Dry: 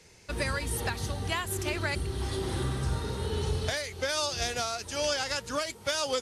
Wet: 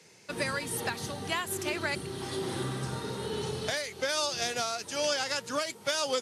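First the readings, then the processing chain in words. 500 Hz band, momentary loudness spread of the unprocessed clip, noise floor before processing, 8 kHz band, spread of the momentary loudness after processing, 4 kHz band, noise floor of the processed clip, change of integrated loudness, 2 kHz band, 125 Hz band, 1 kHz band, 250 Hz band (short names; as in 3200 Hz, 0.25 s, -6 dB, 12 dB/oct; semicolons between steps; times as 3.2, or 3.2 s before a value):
0.0 dB, 4 LU, -51 dBFS, 0.0 dB, 6 LU, 0.0 dB, -51 dBFS, -1.0 dB, 0.0 dB, -7.0 dB, 0.0 dB, 0.0 dB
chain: HPF 130 Hz 24 dB/oct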